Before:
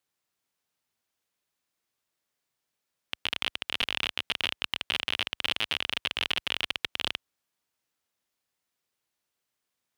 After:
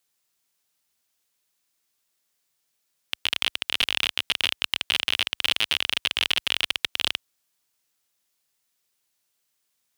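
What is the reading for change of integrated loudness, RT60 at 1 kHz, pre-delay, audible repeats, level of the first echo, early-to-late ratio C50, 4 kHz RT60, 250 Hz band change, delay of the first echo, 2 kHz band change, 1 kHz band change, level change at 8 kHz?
+5.5 dB, no reverb, no reverb, no echo, no echo, no reverb, no reverb, +1.0 dB, no echo, +4.5 dB, +2.0 dB, +9.5 dB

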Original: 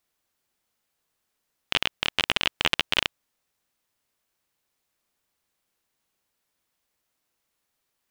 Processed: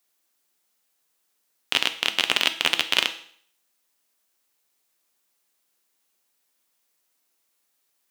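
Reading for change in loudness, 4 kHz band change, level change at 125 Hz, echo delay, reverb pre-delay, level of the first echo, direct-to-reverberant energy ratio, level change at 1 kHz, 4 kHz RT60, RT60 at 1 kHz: +3.0 dB, +3.5 dB, -8.0 dB, no echo, 6 ms, no echo, 8.5 dB, +1.0 dB, 0.55 s, 0.55 s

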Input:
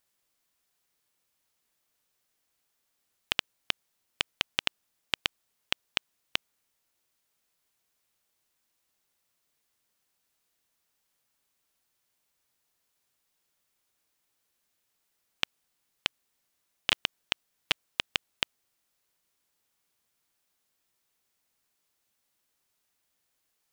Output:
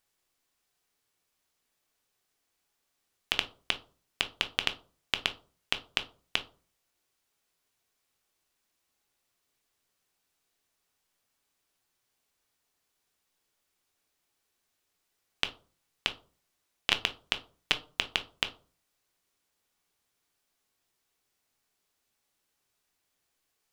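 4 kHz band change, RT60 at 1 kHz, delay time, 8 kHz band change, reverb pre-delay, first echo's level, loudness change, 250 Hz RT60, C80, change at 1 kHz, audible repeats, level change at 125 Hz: 0.0 dB, 0.35 s, no echo, -1.0 dB, 3 ms, no echo, +0.5 dB, 0.50 s, 22.0 dB, +1.0 dB, no echo, +1.0 dB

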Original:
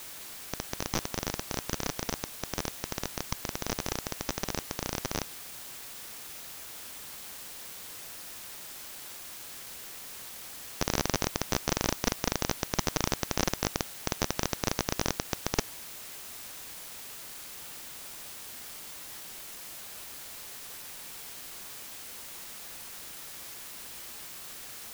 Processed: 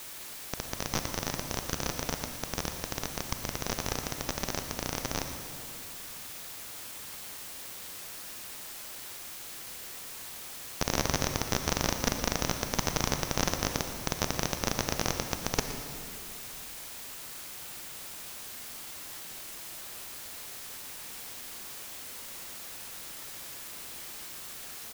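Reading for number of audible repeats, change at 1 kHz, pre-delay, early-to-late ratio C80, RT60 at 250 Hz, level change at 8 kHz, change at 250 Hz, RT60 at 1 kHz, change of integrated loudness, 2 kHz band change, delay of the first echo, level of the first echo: 1, +1.0 dB, 30 ms, 7.0 dB, 2.9 s, +1.0 dB, 0.0 dB, 2.4 s, +1.0 dB, +1.0 dB, 117 ms, -14.5 dB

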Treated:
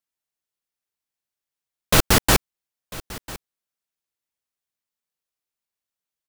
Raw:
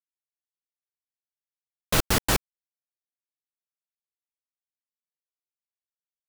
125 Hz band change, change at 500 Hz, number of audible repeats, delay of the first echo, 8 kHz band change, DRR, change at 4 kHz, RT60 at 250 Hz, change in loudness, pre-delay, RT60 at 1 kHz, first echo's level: +6.5 dB, +6.5 dB, 1, 997 ms, +6.5 dB, no reverb, +6.5 dB, no reverb, +6.5 dB, no reverb, no reverb, -19.0 dB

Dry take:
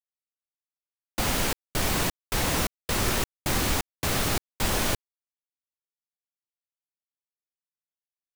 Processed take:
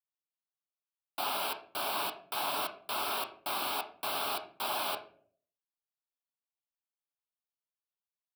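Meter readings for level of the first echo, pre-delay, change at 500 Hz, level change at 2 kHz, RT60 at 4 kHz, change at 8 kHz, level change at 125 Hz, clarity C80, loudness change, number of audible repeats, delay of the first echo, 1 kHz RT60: no echo, 7 ms, -7.5 dB, -9.0 dB, 0.35 s, -13.5 dB, -29.0 dB, 15.5 dB, -7.5 dB, no echo, no echo, 0.45 s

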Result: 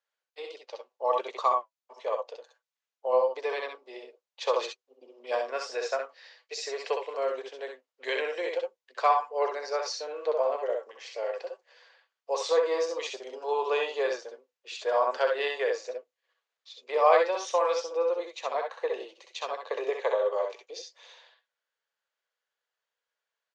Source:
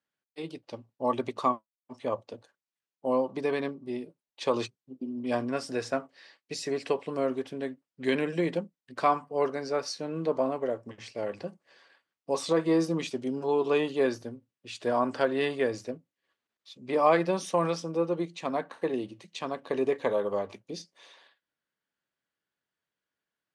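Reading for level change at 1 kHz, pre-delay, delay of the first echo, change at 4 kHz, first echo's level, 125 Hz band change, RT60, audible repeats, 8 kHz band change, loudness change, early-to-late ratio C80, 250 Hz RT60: +2.5 dB, no reverb, 63 ms, +2.0 dB, -5.0 dB, under -40 dB, no reverb, 1, +1.0 dB, +0.5 dB, no reverb, no reverb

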